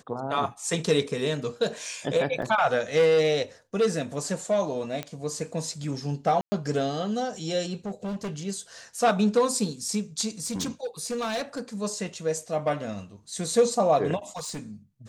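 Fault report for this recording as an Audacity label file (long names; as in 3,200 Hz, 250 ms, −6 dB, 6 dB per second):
2.420000	2.420000	drop-out 4.1 ms
5.030000	5.030000	click −17 dBFS
6.410000	6.520000	drop-out 110 ms
7.850000	8.300000	clipping −28.5 dBFS
10.400000	11.610000	clipping −25.5 dBFS
14.290000	14.600000	clipping −31 dBFS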